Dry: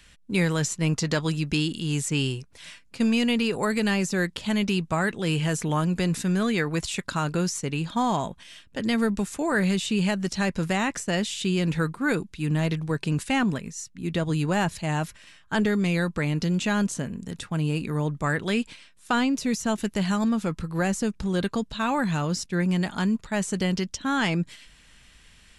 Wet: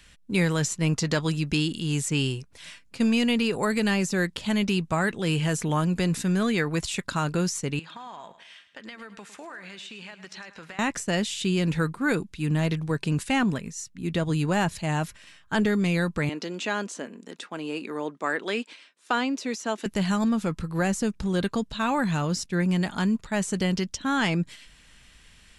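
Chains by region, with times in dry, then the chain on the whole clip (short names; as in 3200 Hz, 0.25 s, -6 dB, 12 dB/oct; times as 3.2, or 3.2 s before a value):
7.79–10.79 band-pass 1800 Hz, Q 0.79 + compressor 10:1, threshold -37 dBFS + feedback echo 0.106 s, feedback 39%, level -13.5 dB
16.29–19.86 HPF 280 Hz 24 dB/oct + air absorption 57 m
whole clip: dry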